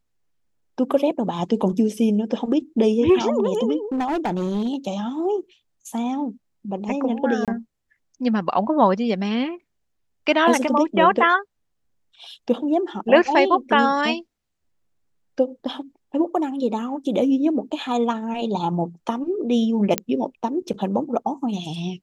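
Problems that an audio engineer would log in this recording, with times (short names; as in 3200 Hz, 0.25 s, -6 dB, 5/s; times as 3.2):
3.92–4.75 clipped -19.5 dBFS
7.45–7.48 gap 27 ms
19.98 pop -3 dBFS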